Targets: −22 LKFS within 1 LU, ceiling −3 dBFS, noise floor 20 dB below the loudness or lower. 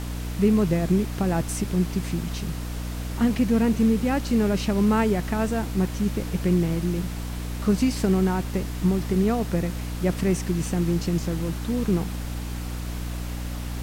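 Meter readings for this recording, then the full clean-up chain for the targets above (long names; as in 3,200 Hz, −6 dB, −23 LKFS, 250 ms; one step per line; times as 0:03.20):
mains hum 60 Hz; hum harmonics up to 300 Hz; level of the hum −28 dBFS; background noise floor −31 dBFS; target noise floor −45 dBFS; integrated loudness −25.0 LKFS; sample peak −10.0 dBFS; target loudness −22.0 LKFS
→ hum removal 60 Hz, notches 5
noise reduction from a noise print 14 dB
level +3 dB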